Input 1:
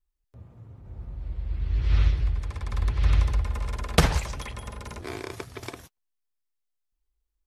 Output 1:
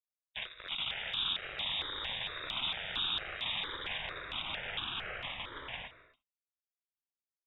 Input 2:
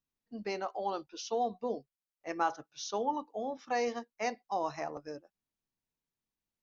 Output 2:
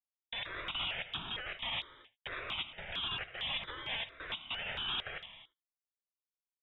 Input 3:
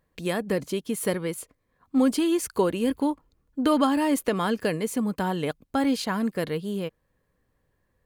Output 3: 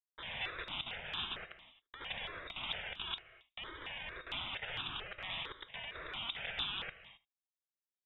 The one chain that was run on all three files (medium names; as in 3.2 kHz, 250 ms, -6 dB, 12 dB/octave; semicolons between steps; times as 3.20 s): expander -46 dBFS; high-pass 45 Hz 6 dB/octave; dynamic bell 2.9 kHz, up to -3 dB, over -50 dBFS, Q 1.8; comb 4.3 ms, depth 91%; compression 4:1, threshold -34 dBFS; waveshaping leveller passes 5; integer overflow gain 28.5 dB; delay 76 ms -20 dB; valve stage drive 32 dB, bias 0.65; gated-style reverb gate 290 ms flat, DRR 11.5 dB; frequency inversion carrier 3.7 kHz; stepped phaser 4.4 Hz 720–2000 Hz; trim +3 dB